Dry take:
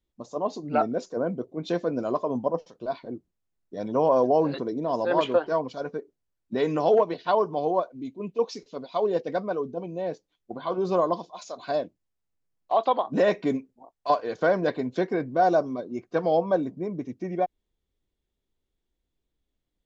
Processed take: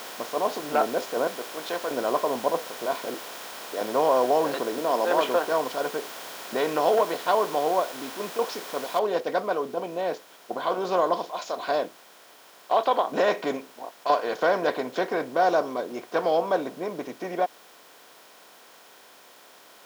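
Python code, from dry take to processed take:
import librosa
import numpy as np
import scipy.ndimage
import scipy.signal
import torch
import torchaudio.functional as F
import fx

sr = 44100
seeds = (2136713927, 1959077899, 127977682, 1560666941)

y = fx.highpass(x, sr, hz=1100.0, slope=6, at=(1.27, 1.91))
y = fx.highpass(y, sr, hz=300.0, slope=24, at=(3.14, 3.81))
y = fx.steep_highpass(y, sr, hz=170.0, slope=36, at=(4.78, 5.29))
y = fx.noise_floor_step(y, sr, seeds[0], at_s=8.99, before_db=-47, after_db=-68, tilt_db=0.0)
y = fx.bin_compress(y, sr, power=0.6)
y = fx.highpass(y, sr, hz=650.0, slope=6)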